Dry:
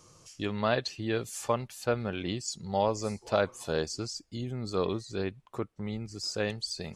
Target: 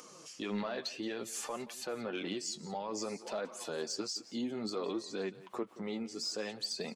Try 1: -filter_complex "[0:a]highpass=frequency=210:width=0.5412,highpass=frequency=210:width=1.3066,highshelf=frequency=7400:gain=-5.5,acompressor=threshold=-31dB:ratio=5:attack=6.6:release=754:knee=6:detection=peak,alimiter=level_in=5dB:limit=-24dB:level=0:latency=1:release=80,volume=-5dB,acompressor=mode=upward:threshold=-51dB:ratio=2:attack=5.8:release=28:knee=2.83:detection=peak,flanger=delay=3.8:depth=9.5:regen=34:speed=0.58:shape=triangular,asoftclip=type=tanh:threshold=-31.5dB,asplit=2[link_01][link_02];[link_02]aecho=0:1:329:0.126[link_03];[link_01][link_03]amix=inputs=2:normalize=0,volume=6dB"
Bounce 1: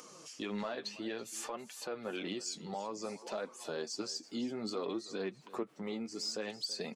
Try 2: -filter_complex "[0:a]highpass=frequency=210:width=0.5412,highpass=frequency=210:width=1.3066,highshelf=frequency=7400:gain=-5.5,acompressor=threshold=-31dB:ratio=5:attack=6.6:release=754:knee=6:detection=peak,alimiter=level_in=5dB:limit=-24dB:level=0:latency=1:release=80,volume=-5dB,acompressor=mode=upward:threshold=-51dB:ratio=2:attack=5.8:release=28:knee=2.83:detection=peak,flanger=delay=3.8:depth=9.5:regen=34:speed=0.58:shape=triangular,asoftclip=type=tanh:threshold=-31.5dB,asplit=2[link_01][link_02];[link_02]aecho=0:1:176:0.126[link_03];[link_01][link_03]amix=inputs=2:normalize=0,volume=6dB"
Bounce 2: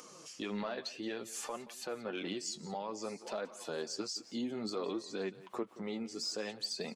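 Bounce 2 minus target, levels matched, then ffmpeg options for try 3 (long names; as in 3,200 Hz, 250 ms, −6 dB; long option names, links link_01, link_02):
downward compressor: peak gain reduction +11 dB
-filter_complex "[0:a]highpass=frequency=210:width=0.5412,highpass=frequency=210:width=1.3066,highshelf=frequency=7400:gain=-5.5,alimiter=level_in=5dB:limit=-24dB:level=0:latency=1:release=80,volume=-5dB,acompressor=mode=upward:threshold=-51dB:ratio=2:attack=5.8:release=28:knee=2.83:detection=peak,flanger=delay=3.8:depth=9.5:regen=34:speed=0.58:shape=triangular,asoftclip=type=tanh:threshold=-31.5dB,asplit=2[link_01][link_02];[link_02]aecho=0:1:176:0.126[link_03];[link_01][link_03]amix=inputs=2:normalize=0,volume=6dB"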